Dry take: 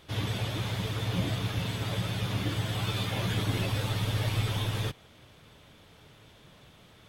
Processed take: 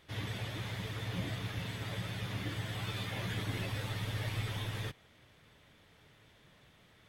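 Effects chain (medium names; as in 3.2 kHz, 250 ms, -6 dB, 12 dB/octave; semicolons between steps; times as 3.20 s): peaking EQ 1.9 kHz +6.5 dB 0.49 oct; trim -8 dB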